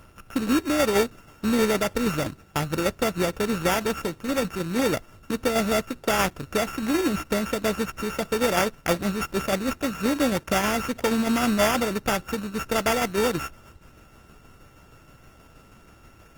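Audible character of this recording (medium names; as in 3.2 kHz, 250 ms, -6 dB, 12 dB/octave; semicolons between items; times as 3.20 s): a buzz of ramps at a fixed pitch in blocks of 16 samples; tremolo saw down 6.3 Hz, depth 40%; aliases and images of a low sample rate 4.1 kHz, jitter 0%; Opus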